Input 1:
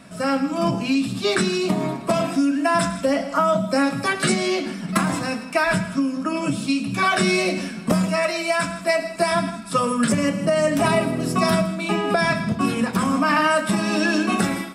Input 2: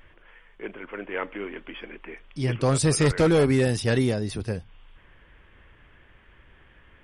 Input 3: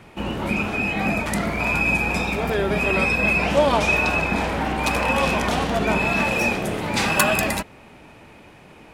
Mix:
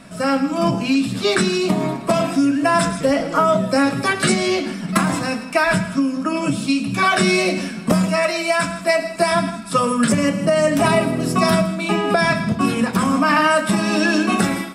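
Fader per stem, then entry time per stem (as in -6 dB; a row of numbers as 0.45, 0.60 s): +3.0 dB, -11.5 dB, off; 0.00 s, 0.00 s, off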